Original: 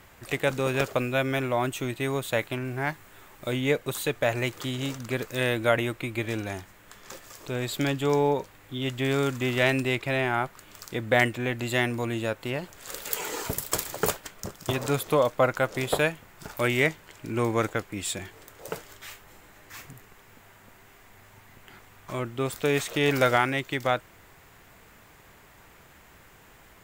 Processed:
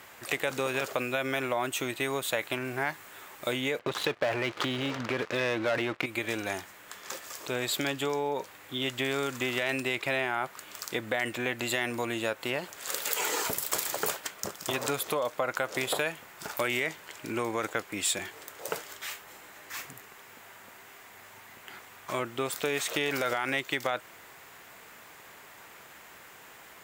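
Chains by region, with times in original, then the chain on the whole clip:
3.79–6.06 HPF 48 Hz + air absorption 230 m + sample leveller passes 3
whole clip: limiter -17 dBFS; compressor, threshold -28 dBFS; HPF 520 Hz 6 dB/oct; gain +5 dB

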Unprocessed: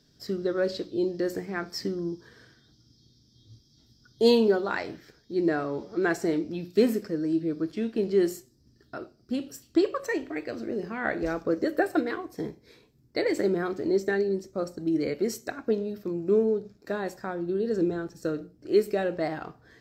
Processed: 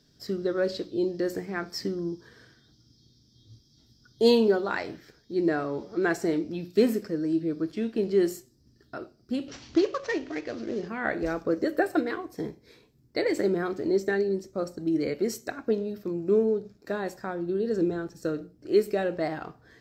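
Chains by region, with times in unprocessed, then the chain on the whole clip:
9.48–10.88 CVSD 32 kbps + upward compressor, threshold -35 dBFS
whole clip: dry

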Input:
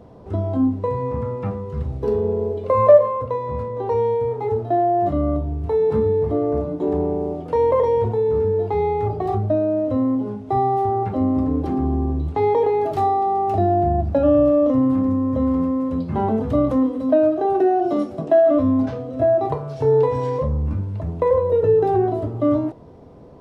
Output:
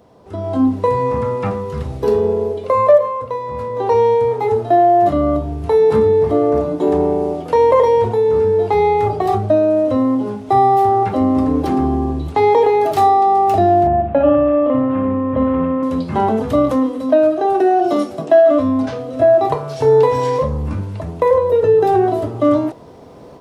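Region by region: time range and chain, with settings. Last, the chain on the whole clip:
13.87–15.83 steep low-pass 3000 Hz + flutter echo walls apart 10.1 m, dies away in 0.49 s
whole clip: tilt +2.5 dB/oct; AGC gain up to 11.5 dB; gain -1 dB

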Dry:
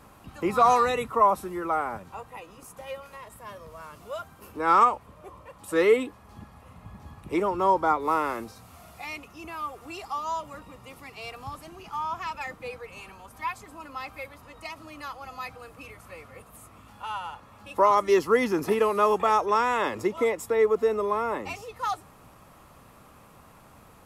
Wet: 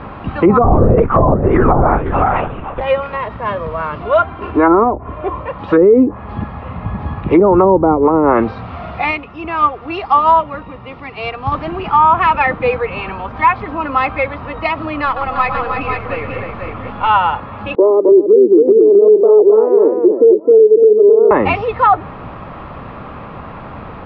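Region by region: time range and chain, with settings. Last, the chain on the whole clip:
0.64–2.81 echo 0.513 s -10.5 dB + LPC vocoder at 8 kHz whisper
4.03–5.38 LPF 4500 Hz + comb 2.9 ms, depth 52%
9.11–11.52 high shelf 4600 Hz +5.5 dB + upward expander, over -43 dBFS
15.05–17.08 half-wave gain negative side -3 dB + tapped delay 0.112/0.306/0.494 s -9/-6.5/-5 dB
17.75–21.31 Butterworth band-pass 390 Hz, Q 2.3 + echo 0.263 s -4 dB
whole clip: treble ducked by the level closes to 390 Hz, closed at -20 dBFS; Bessel low-pass 2100 Hz, order 8; maximiser +24 dB; gain -1 dB

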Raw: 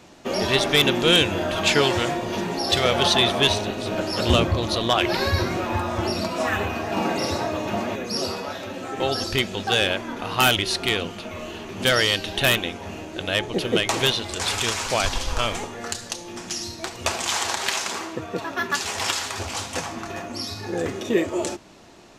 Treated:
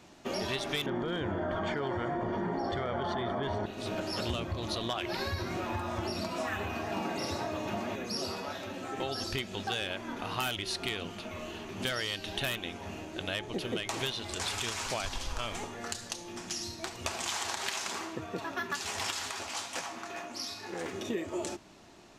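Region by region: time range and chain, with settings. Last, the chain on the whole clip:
0.86–3.66 polynomial smoothing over 41 samples + hard clip -11 dBFS + fast leveller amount 100%
19.31–20.93 HPF 500 Hz 6 dB/oct + doubler 16 ms -11 dB + Doppler distortion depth 0.22 ms
whole clip: bell 500 Hz -4.5 dB 0.22 oct; compressor, threshold -24 dBFS; gain -6.5 dB

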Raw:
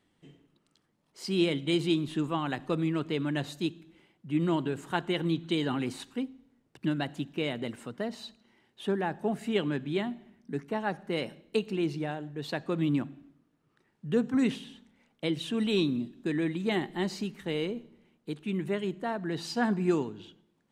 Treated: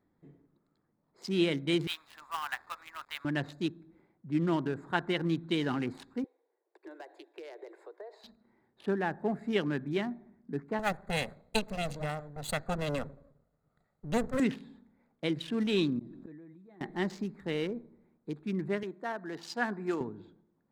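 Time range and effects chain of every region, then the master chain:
1.87–3.25 inverse Chebyshev high-pass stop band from 440 Hz + high shelf 7000 Hz +3 dB + companded quantiser 4-bit
6.24–8.24 steep high-pass 340 Hz 96 dB/oct + bell 1300 Hz -9.5 dB 0.25 oct + compressor 4:1, threshold -40 dBFS
10.79–14.4 minimum comb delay 1.5 ms + Butterworth band-stop 5300 Hz, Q 4.1 + tone controls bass +2 dB, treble +13 dB
15.99–16.81 comb 6.2 ms, depth 35% + flipped gate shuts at -32 dBFS, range -27 dB + sustainer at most 25 dB/s
18.83–20.01 HPF 210 Hz + low shelf 470 Hz -6.5 dB
whole clip: Wiener smoothing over 15 samples; dynamic EQ 1700 Hz, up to +5 dB, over -49 dBFS, Q 1.7; gain -1.5 dB

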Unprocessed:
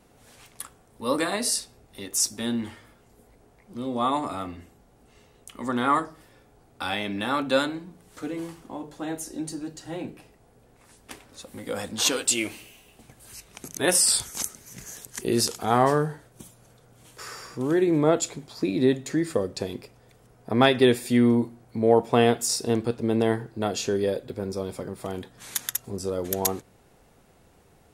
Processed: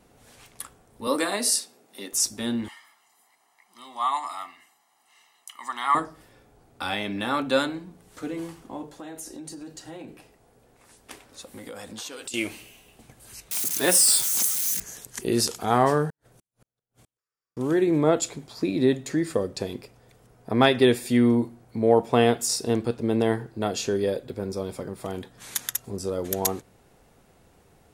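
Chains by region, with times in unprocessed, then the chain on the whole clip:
1.07–2.13 HPF 200 Hz 24 dB/oct + high shelf 6100 Hz +4.5 dB
2.68–5.95 HPF 1000 Hz + comb 1 ms, depth 77%
8.87–12.34 compressor 10:1, threshold -34 dBFS + tone controls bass -4 dB, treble +1 dB
13.51–14.8 switching spikes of -20.5 dBFS + HPF 140 Hz 24 dB/oct
16.1–17.57 compressor 12:1, threshold -51 dBFS + flipped gate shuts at -46 dBFS, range -40 dB
whole clip: dry

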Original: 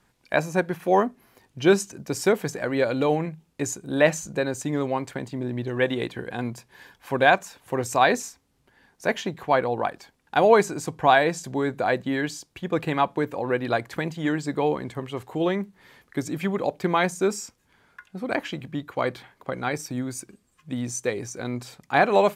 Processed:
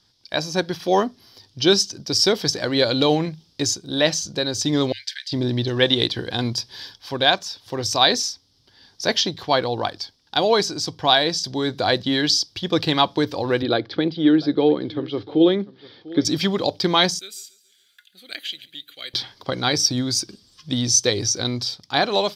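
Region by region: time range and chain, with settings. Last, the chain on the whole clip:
4.92–5.32 brick-wall FIR high-pass 1500 Hz + tilt -2 dB/oct
13.62–16.25 speaker cabinet 150–3300 Hz, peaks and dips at 320 Hz +6 dB, 470 Hz +4 dB, 680 Hz -3 dB, 1000 Hz -9 dB, 1900 Hz -6 dB, 2800 Hz -7 dB + echo 0.697 s -20.5 dB
17.19–19.14 differentiator + fixed phaser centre 2300 Hz, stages 4 + feedback echo 0.141 s, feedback 48%, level -20 dB
whole clip: thirty-one-band EQ 100 Hz +12 dB, 315 Hz +4 dB, 5000 Hz +7 dB; AGC; band shelf 4300 Hz +16 dB 1.1 oct; gain -5 dB

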